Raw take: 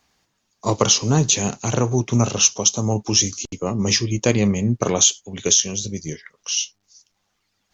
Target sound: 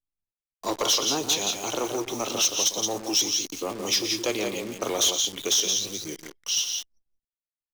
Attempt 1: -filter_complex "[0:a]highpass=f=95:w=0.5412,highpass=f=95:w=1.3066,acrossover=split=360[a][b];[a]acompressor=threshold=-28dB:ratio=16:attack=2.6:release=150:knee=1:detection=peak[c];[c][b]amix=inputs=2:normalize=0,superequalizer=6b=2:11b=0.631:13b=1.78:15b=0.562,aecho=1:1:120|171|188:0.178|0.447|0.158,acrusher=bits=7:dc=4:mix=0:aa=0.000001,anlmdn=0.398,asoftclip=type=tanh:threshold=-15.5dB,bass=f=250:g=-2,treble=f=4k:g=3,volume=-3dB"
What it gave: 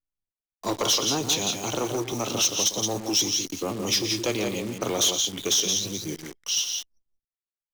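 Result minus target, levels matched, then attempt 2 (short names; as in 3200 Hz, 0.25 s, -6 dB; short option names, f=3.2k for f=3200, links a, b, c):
compressor: peak gain reduction -10.5 dB
-filter_complex "[0:a]highpass=f=95:w=0.5412,highpass=f=95:w=1.3066,acrossover=split=360[a][b];[a]acompressor=threshold=-39dB:ratio=16:attack=2.6:release=150:knee=1:detection=peak[c];[c][b]amix=inputs=2:normalize=0,superequalizer=6b=2:11b=0.631:13b=1.78:15b=0.562,aecho=1:1:120|171|188:0.178|0.447|0.158,acrusher=bits=7:dc=4:mix=0:aa=0.000001,anlmdn=0.398,asoftclip=type=tanh:threshold=-15.5dB,bass=f=250:g=-2,treble=f=4k:g=3,volume=-3dB"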